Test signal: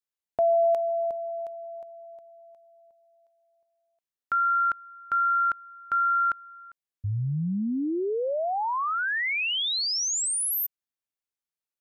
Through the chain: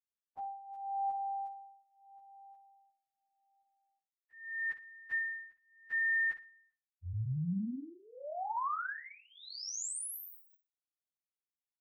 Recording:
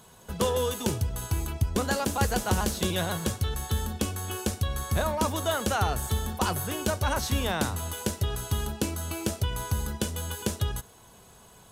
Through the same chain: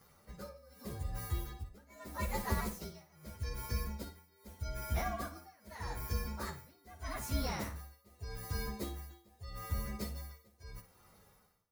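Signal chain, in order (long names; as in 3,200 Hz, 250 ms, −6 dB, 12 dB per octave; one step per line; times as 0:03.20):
partials spread apart or drawn together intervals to 116%
amplitude tremolo 0.81 Hz, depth 96%
flutter between parallel walls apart 9.8 metres, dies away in 0.28 s
level −5.5 dB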